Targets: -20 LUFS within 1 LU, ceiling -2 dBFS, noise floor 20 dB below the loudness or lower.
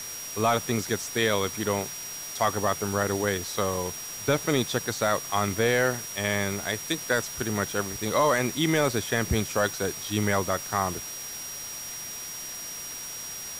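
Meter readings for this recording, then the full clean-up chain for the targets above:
steady tone 5700 Hz; tone level -37 dBFS; noise floor -37 dBFS; noise floor target -48 dBFS; loudness -27.5 LUFS; peak -11.0 dBFS; loudness target -20.0 LUFS
-> notch 5700 Hz, Q 30; denoiser 11 dB, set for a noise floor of -37 dBFS; gain +7.5 dB

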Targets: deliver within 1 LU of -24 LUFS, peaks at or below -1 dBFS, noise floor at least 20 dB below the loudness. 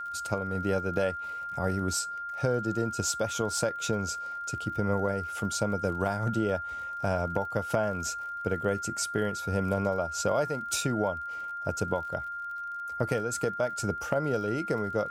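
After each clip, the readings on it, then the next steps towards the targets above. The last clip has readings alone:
ticks 46/s; steady tone 1400 Hz; tone level -34 dBFS; loudness -30.5 LUFS; peak -10.0 dBFS; loudness target -24.0 LUFS
-> de-click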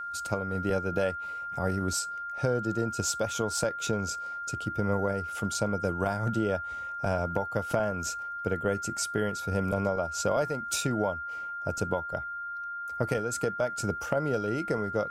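ticks 0.066/s; steady tone 1400 Hz; tone level -34 dBFS
-> notch 1400 Hz, Q 30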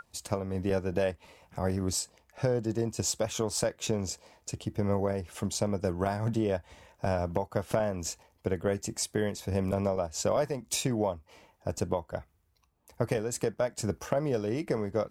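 steady tone none; loudness -31.5 LUFS; peak -10.5 dBFS; loudness target -24.0 LUFS
-> gain +7.5 dB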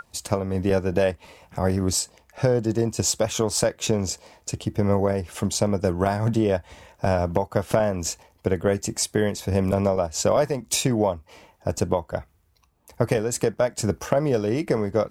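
loudness -24.0 LUFS; peak -3.0 dBFS; noise floor -62 dBFS

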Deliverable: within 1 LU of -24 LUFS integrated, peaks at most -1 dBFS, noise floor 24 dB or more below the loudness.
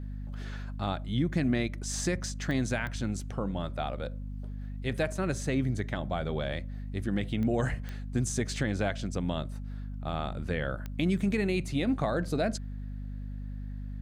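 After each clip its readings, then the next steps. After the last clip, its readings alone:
clicks 5; hum 50 Hz; harmonics up to 250 Hz; hum level -35 dBFS; loudness -32.5 LUFS; peak -14.5 dBFS; loudness target -24.0 LUFS
-> de-click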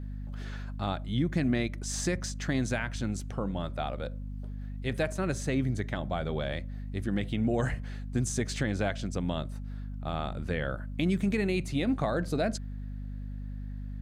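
clicks 0; hum 50 Hz; harmonics up to 250 Hz; hum level -35 dBFS
-> notches 50/100/150/200/250 Hz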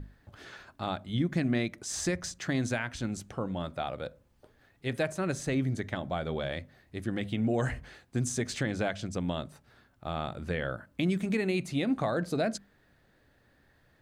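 hum none; loudness -32.5 LUFS; peak -14.0 dBFS; loudness target -24.0 LUFS
-> gain +8.5 dB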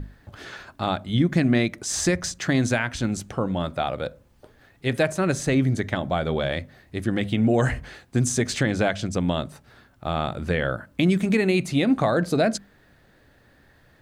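loudness -24.0 LUFS; peak -5.5 dBFS; noise floor -58 dBFS

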